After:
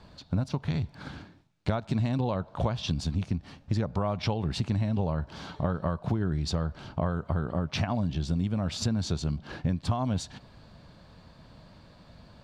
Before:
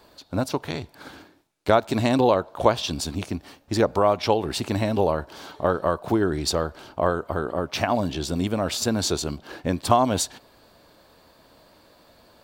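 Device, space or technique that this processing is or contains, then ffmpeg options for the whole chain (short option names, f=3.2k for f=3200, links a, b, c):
jukebox: -af "lowpass=5.7k,lowshelf=f=240:t=q:w=1.5:g=11,acompressor=threshold=-24dB:ratio=5,volume=-1.5dB"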